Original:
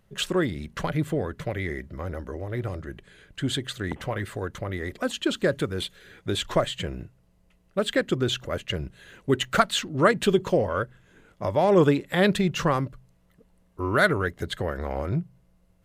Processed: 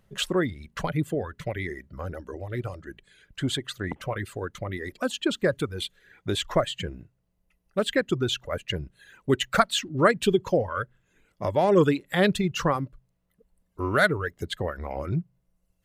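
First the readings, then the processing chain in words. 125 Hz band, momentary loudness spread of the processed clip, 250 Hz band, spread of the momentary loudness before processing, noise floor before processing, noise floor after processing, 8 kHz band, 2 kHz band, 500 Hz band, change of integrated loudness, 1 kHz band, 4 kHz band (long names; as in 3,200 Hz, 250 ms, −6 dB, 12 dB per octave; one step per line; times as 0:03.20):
−1.5 dB, 15 LU, −1.0 dB, 13 LU, −63 dBFS, −74 dBFS, −0.5 dB, −0.5 dB, −1.0 dB, −0.5 dB, −0.5 dB, −0.5 dB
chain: reverb reduction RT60 1.3 s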